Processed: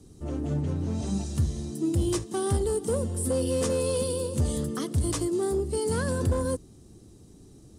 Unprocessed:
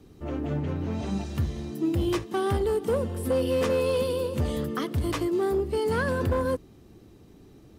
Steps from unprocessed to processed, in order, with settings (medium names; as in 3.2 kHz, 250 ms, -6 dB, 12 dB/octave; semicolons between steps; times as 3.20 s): FFT filter 130 Hz 0 dB, 2.4 kHz -10 dB, 9.3 kHz +12 dB, 14 kHz -9 dB; trim +2 dB